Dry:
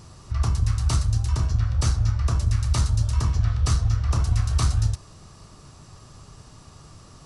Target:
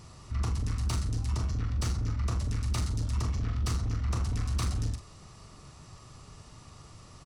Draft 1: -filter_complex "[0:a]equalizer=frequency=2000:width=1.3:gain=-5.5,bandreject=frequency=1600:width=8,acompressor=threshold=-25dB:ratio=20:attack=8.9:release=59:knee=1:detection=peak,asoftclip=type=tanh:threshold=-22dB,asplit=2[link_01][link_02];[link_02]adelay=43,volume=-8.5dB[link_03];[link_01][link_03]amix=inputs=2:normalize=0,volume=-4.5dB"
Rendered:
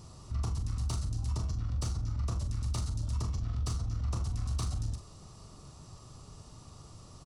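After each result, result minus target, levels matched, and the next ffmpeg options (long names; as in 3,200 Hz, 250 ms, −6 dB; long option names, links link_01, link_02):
downward compressor: peak gain reduction +10 dB; 2,000 Hz band −7.5 dB
-filter_complex "[0:a]equalizer=frequency=2000:width=1.3:gain=-5.5,bandreject=frequency=1600:width=8,asoftclip=type=tanh:threshold=-22dB,asplit=2[link_01][link_02];[link_02]adelay=43,volume=-8.5dB[link_03];[link_01][link_03]amix=inputs=2:normalize=0,volume=-4.5dB"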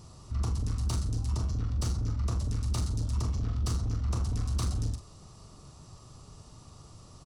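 2,000 Hz band −7.0 dB
-filter_complex "[0:a]equalizer=frequency=2000:width=1.3:gain=4.5,bandreject=frequency=1600:width=8,asoftclip=type=tanh:threshold=-22dB,asplit=2[link_01][link_02];[link_02]adelay=43,volume=-8.5dB[link_03];[link_01][link_03]amix=inputs=2:normalize=0,volume=-4.5dB"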